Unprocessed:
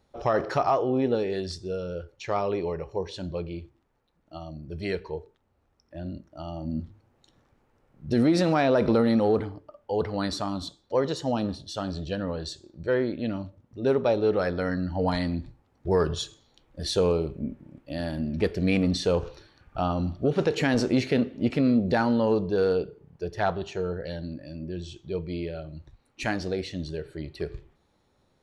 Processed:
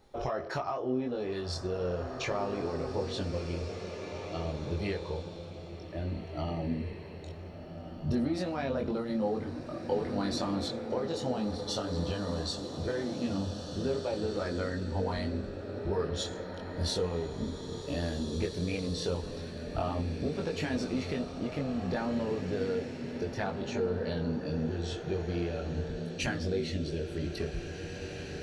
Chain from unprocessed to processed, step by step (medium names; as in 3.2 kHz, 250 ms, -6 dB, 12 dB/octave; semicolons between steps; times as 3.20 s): compression 6:1, threshold -37 dBFS, peak gain reduction 18 dB; chorus voices 4, 0.13 Hz, delay 22 ms, depth 2.4 ms; swelling reverb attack 2030 ms, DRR 5 dB; trim +8.5 dB